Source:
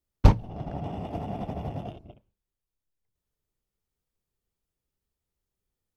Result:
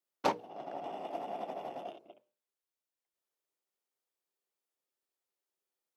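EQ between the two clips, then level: ladder high-pass 310 Hz, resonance 20%; notches 60/120/180/240/300/360/420/480/540/600 Hz; notch 440 Hz, Q 12; +2.5 dB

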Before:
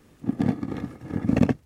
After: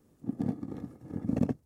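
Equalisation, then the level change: low shelf 67 Hz -7 dB; bell 2400 Hz -12 dB 2.3 oct; -7.0 dB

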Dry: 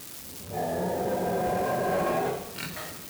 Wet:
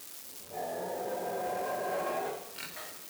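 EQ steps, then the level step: tone controls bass -14 dB, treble +2 dB; -6.0 dB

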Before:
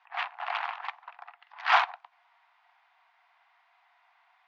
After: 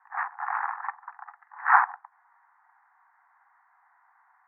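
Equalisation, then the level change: elliptic band-pass 800–1800 Hz, stop band 40 dB; +5.0 dB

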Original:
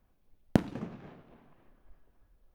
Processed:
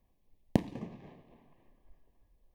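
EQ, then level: Butterworth band-stop 1400 Hz, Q 2.6; -2.5 dB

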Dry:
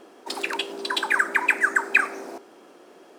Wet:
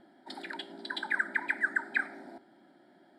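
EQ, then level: LPF 4600 Hz 12 dB/oct; fixed phaser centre 1100 Hz, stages 4; fixed phaser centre 2700 Hz, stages 4; 0.0 dB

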